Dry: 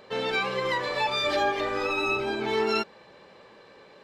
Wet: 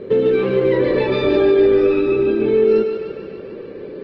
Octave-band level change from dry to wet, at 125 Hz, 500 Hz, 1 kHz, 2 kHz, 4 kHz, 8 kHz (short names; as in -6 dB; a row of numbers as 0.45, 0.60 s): +14.5 dB, +15.5 dB, -3.5 dB, -1.0 dB, -3.5 dB, under -15 dB